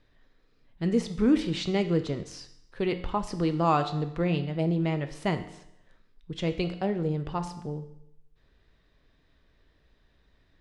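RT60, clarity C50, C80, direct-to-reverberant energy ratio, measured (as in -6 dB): 0.80 s, 11.5 dB, 14.0 dB, 7.5 dB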